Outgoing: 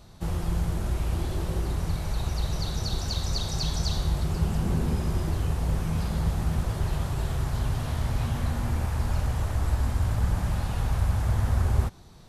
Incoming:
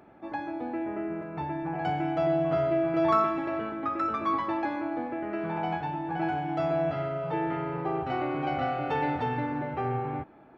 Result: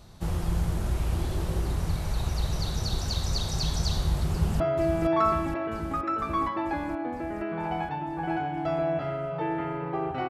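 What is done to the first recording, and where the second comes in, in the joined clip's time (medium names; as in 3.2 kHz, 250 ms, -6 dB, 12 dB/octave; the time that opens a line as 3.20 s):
outgoing
4.30–4.60 s: echo throw 470 ms, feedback 75%, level -6.5 dB
4.60 s: go over to incoming from 2.52 s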